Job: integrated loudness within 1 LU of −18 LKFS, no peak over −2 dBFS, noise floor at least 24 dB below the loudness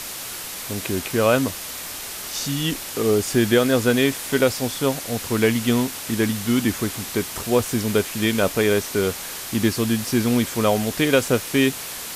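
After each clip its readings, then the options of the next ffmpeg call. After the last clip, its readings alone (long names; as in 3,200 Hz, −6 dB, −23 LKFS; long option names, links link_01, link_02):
background noise floor −33 dBFS; target noise floor −46 dBFS; integrated loudness −21.5 LKFS; sample peak −4.5 dBFS; target loudness −18.0 LKFS
→ -af "afftdn=noise_reduction=13:noise_floor=-33"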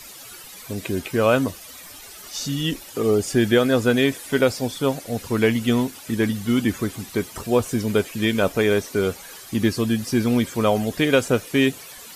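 background noise floor −41 dBFS; target noise floor −46 dBFS
→ -af "afftdn=noise_reduction=6:noise_floor=-41"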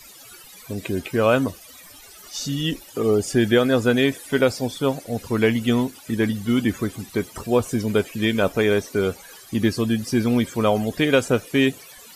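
background noise floor −45 dBFS; target noise floor −46 dBFS
→ -af "afftdn=noise_reduction=6:noise_floor=-45"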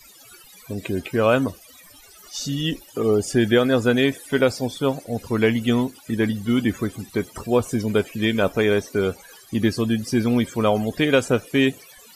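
background noise floor −48 dBFS; integrated loudness −22.0 LKFS; sample peak −5.0 dBFS; target loudness −18.0 LKFS
→ -af "volume=4dB,alimiter=limit=-2dB:level=0:latency=1"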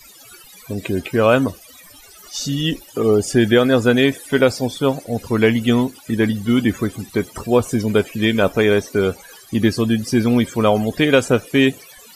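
integrated loudness −18.0 LKFS; sample peak −2.0 dBFS; background noise floor −44 dBFS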